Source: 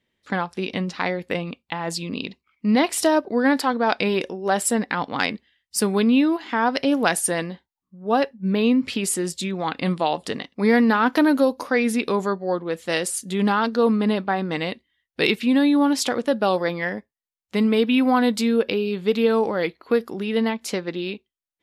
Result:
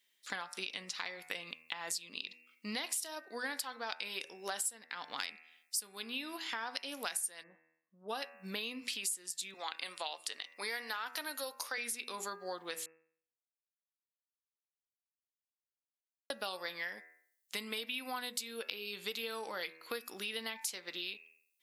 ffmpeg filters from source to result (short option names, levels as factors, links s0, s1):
-filter_complex "[0:a]asplit=3[s0][s1][s2];[s0]afade=t=out:st=7.42:d=0.02[s3];[s1]lowpass=f=1200:w=0.5412,lowpass=f=1200:w=1.3066,afade=t=in:st=7.42:d=0.02,afade=t=out:st=8.08:d=0.02[s4];[s2]afade=t=in:st=8.08:d=0.02[s5];[s3][s4][s5]amix=inputs=3:normalize=0,asettb=1/sr,asplit=3[s6][s7][s8];[s6]atrim=end=9.544[s9];[s7]atrim=start=9.54:end=11.78,asetpts=PTS-STARTPTS,afade=t=in:d=0.004:c=qsin,afade=t=out:st=2.236:d=0.004:c=qsin,highpass=400[s10];[s8]atrim=start=11.776[s11];[s9][s10]acrossfade=d=0.004:c1=hsin:c2=qsin[s12];[s12][s11]acrossfade=d=0.004:c1=qsin:c2=hsin,asplit=3[s13][s14][s15];[s13]atrim=end=12.86,asetpts=PTS-STARTPTS,afade=t=out:st=12.856:d=0.004:c=hsin[s16];[s14]atrim=start=12.86:end=16.3,asetpts=PTS-STARTPTS,volume=0[s17];[s15]atrim=start=16.3,asetpts=PTS-STARTPTS,afade=t=in:d=0.004:c=hsin[s18];[s16][s17][s18]concat=n=3:v=0:a=1,aderivative,bandreject=f=80.93:t=h:w=4,bandreject=f=161.86:t=h:w=4,bandreject=f=242.79:t=h:w=4,bandreject=f=323.72:t=h:w=4,bandreject=f=404.65:t=h:w=4,bandreject=f=485.58:t=h:w=4,bandreject=f=566.51:t=h:w=4,bandreject=f=647.44:t=h:w=4,bandreject=f=728.37:t=h:w=4,bandreject=f=809.3:t=h:w=4,bandreject=f=890.23:t=h:w=4,bandreject=f=971.16:t=h:w=4,bandreject=f=1052.09:t=h:w=4,bandreject=f=1133.02:t=h:w=4,bandreject=f=1213.95:t=h:w=4,bandreject=f=1294.88:t=h:w=4,bandreject=f=1375.81:t=h:w=4,bandreject=f=1456.74:t=h:w=4,bandreject=f=1537.67:t=h:w=4,bandreject=f=1618.6:t=h:w=4,bandreject=f=1699.53:t=h:w=4,bandreject=f=1780.46:t=h:w=4,bandreject=f=1861.39:t=h:w=4,bandreject=f=1942.32:t=h:w=4,bandreject=f=2023.25:t=h:w=4,bandreject=f=2104.18:t=h:w=4,bandreject=f=2185.11:t=h:w=4,bandreject=f=2266.04:t=h:w=4,bandreject=f=2346.97:t=h:w=4,bandreject=f=2427.9:t=h:w=4,bandreject=f=2508.83:t=h:w=4,bandreject=f=2589.76:t=h:w=4,bandreject=f=2670.69:t=h:w=4,bandreject=f=2751.62:t=h:w=4,acompressor=threshold=0.00501:ratio=6,volume=2.82"